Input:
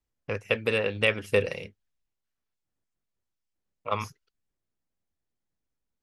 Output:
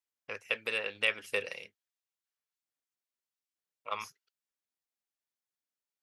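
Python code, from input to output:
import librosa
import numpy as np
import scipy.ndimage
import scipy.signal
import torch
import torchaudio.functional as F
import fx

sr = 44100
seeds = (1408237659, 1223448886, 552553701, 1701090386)

y = fx.highpass(x, sr, hz=1400.0, slope=6)
y = y * librosa.db_to_amplitude(-2.5)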